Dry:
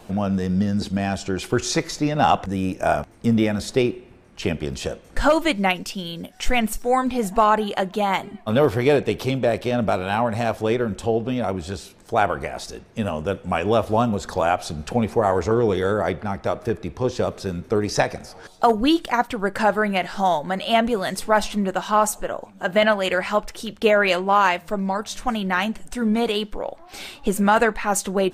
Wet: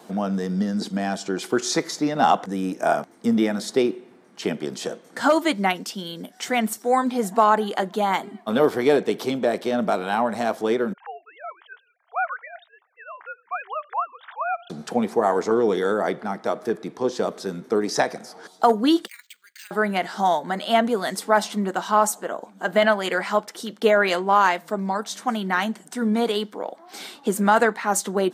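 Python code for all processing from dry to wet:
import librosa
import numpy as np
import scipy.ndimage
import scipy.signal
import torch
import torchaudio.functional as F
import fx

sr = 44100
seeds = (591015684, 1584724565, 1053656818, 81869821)

y = fx.chain(x, sr, fx.sine_speech(),
    fx.highpass(hz=940.0, slope=24),
    fx.env_lowpass(base_hz=1700.0, full_db=-24.0), at=(10.93, 14.7))
y = fx.chain(y, sr, fx.ellip_bandpass(low_hz=2300.0, high_hz=8800.0, order=3, stop_db=50),
    fx.resample_bad(factor=4, down='filtered', up='hold'),
    fx.level_steps(step_db=10), at=(19.07, 19.71))
y = scipy.signal.sosfilt(scipy.signal.butter(4, 190.0, 'highpass', fs=sr, output='sos'), y)
y = fx.peak_eq(y, sr, hz=2600.0, db=-8.0, octaves=0.31)
y = fx.notch(y, sr, hz=560.0, q=12.0)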